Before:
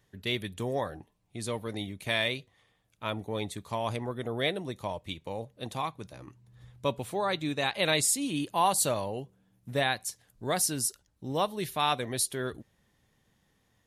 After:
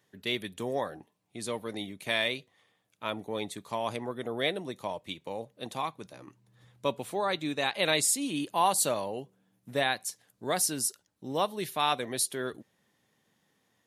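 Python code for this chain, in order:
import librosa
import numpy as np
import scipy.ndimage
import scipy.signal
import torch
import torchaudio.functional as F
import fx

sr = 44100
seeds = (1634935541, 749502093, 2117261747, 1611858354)

y = scipy.signal.sosfilt(scipy.signal.butter(2, 180.0, 'highpass', fs=sr, output='sos'), x)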